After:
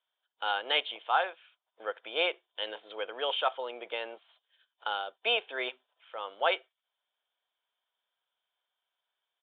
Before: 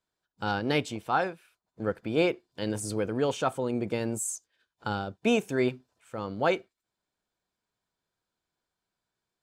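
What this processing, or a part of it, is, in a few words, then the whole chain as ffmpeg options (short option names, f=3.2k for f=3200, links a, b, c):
musical greeting card: -af "aresample=8000,aresample=44100,highpass=f=570:w=0.5412,highpass=f=570:w=1.3066,equalizer=f=3.2k:t=o:w=0.3:g=12"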